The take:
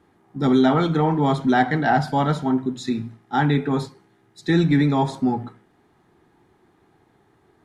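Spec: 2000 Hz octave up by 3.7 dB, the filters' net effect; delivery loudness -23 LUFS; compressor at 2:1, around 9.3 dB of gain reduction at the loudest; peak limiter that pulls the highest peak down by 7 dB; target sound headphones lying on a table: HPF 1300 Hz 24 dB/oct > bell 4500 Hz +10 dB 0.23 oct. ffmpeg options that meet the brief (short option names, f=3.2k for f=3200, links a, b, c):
-af "equalizer=f=2k:t=o:g=5.5,acompressor=threshold=-30dB:ratio=2,alimiter=limit=-20.5dB:level=0:latency=1,highpass=f=1.3k:w=0.5412,highpass=f=1.3k:w=1.3066,equalizer=f=4.5k:t=o:w=0.23:g=10,volume=16dB"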